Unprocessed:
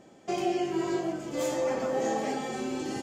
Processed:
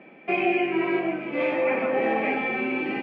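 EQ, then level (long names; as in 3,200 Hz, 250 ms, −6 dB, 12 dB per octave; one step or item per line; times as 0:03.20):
Butterworth high-pass 160 Hz 36 dB per octave
low-pass with resonance 2,400 Hz, resonance Q 10
high-frequency loss of the air 300 metres
+5.0 dB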